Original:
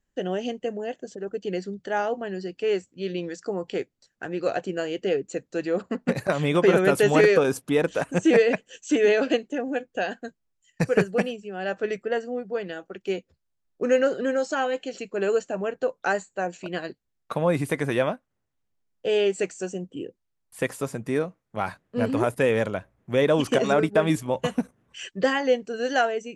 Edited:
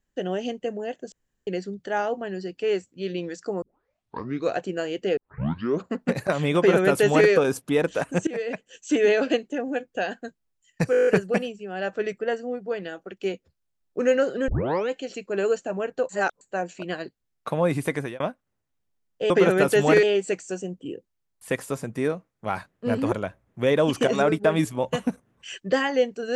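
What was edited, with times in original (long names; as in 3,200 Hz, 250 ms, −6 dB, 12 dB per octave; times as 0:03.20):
0:01.12–0:01.47: fill with room tone
0:03.62: tape start 0.89 s
0:05.17: tape start 0.68 s
0:06.57–0:07.30: duplicate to 0:19.14
0:08.27–0:08.95: fade in, from −19.5 dB
0:10.91: stutter 0.02 s, 9 plays
0:14.32: tape start 0.41 s
0:15.93–0:16.25: reverse
0:17.78–0:18.04: fade out
0:22.23–0:22.63: remove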